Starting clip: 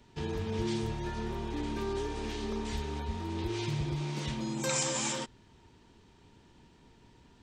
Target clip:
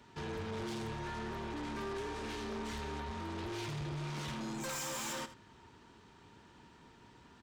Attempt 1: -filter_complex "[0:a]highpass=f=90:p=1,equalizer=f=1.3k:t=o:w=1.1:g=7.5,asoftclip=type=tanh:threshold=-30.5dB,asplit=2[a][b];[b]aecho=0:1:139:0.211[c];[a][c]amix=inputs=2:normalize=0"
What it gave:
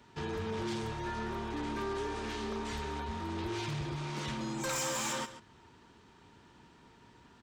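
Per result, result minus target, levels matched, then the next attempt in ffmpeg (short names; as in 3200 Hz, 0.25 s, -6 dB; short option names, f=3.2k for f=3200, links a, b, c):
echo 58 ms late; soft clip: distortion -6 dB
-filter_complex "[0:a]highpass=f=90:p=1,equalizer=f=1.3k:t=o:w=1.1:g=7.5,asoftclip=type=tanh:threshold=-30.5dB,asplit=2[a][b];[b]aecho=0:1:81:0.211[c];[a][c]amix=inputs=2:normalize=0"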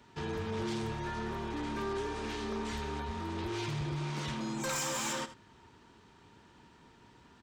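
soft clip: distortion -6 dB
-filter_complex "[0:a]highpass=f=90:p=1,equalizer=f=1.3k:t=o:w=1.1:g=7.5,asoftclip=type=tanh:threshold=-38dB,asplit=2[a][b];[b]aecho=0:1:81:0.211[c];[a][c]amix=inputs=2:normalize=0"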